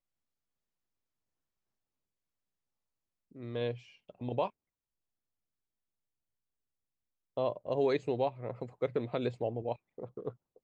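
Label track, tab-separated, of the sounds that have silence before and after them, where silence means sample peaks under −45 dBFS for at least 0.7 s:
3.360000	4.490000	sound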